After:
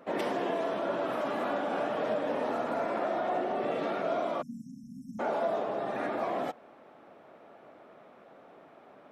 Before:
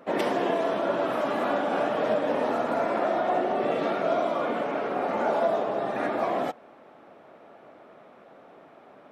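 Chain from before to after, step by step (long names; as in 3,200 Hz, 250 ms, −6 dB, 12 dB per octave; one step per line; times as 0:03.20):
time-frequency box erased 0:04.42–0:05.20, 270–5,200 Hz
in parallel at −1.5 dB: brickwall limiter −24 dBFS, peak gain reduction 10 dB
on the sum: level −8.5 dB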